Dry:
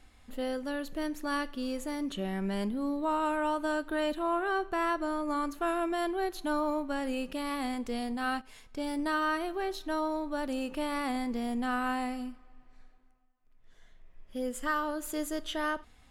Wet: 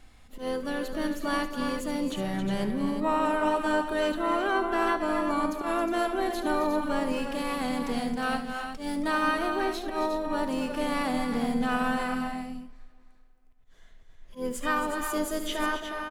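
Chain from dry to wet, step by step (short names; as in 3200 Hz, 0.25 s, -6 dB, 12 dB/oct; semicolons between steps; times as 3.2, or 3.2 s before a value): auto swell 0.101 s; tapped delay 72/223/270/361 ms -13/-19/-9/-8 dB; harmoniser -7 st -15 dB, -3 st -16 dB, +12 st -16 dB; gain +2.5 dB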